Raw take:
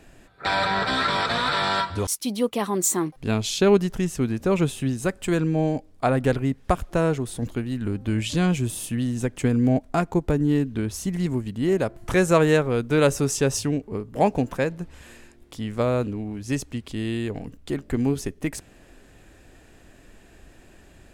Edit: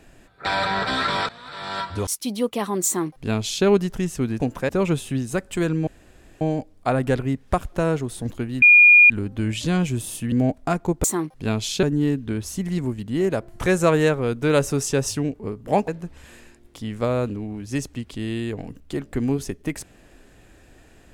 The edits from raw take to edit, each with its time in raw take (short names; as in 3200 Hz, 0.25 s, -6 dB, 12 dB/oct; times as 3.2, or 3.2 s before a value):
1.29–1.95 fade in quadratic, from -21 dB
2.86–3.65 copy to 10.31
5.58 insert room tone 0.54 s
7.79 add tone 2430 Hz -7.5 dBFS 0.48 s
9.01–9.59 cut
14.36–14.65 move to 4.4